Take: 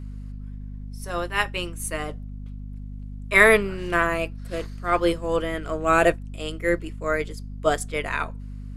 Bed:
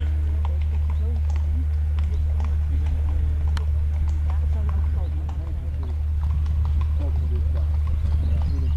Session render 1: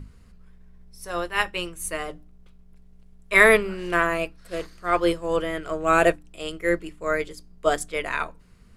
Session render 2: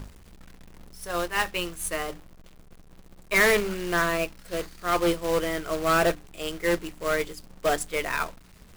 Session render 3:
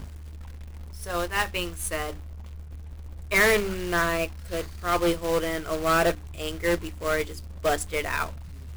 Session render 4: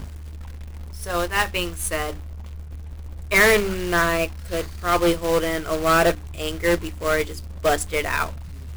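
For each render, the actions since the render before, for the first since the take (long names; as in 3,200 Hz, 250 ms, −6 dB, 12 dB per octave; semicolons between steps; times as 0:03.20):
mains-hum notches 50/100/150/200/250/300 Hz
soft clipping −15 dBFS, distortion −10 dB; log-companded quantiser 4 bits
mix in bed −18.5 dB
level +4.5 dB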